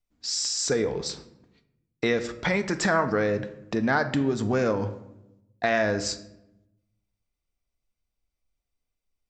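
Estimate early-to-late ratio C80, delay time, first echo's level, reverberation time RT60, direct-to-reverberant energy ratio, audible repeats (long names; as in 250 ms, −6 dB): 15.5 dB, no echo audible, no echo audible, 0.90 s, 8.5 dB, no echo audible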